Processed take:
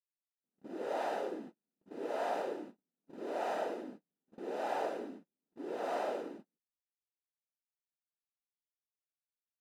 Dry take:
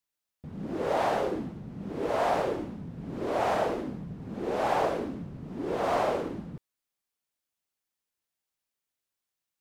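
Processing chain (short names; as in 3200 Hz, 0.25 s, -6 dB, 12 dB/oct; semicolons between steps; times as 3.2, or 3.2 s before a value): HPF 230 Hz 24 dB/oct; notch comb 1100 Hz; feedback echo 99 ms, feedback 36%, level -19.5 dB; gate -39 dBFS, range -39 dB; gain -8.5 dB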